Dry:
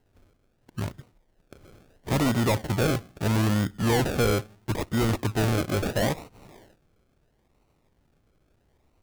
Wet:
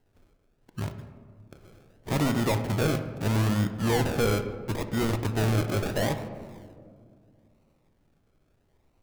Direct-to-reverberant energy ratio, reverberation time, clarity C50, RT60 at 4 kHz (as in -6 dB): 8.0 dB, 2.2 s, 10.0 dB, 0.85 s